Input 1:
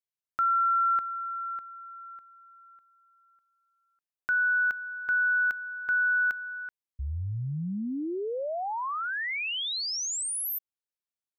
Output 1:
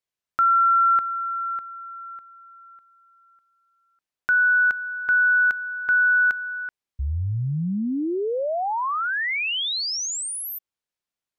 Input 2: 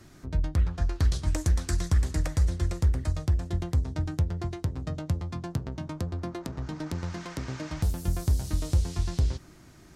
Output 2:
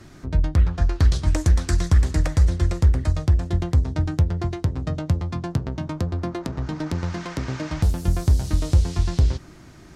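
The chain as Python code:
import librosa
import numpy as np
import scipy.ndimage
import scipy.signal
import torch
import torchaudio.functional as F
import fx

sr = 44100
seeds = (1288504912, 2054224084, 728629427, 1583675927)

y = fx.high_shelf(x, sr, hz=8900.0, db=-10.0)
y = y * 10.0 ** (7.0 / 20.0)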